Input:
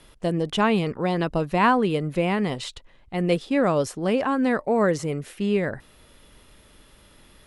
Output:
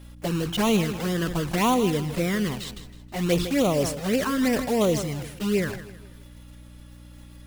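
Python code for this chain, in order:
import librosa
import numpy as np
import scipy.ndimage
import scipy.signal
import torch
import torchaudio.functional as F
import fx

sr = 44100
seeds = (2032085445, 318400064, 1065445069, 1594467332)

p1 = fx.block_float(x, sr, bits=3)
p2 = fx.env_flanger(p1, sr, rest_ms=3.8, full_db=-16.0)
p3 = fx.add_hum(p2, sr, base_hz=60, snr_db=19)
p4 = p3 + fx.echo_feedback(p3, sr, ms=160, feedback_pct=40, wet_db=-14.5, dry=0)
y = fx.sustainer(p4, sr, db_per_s=79.0)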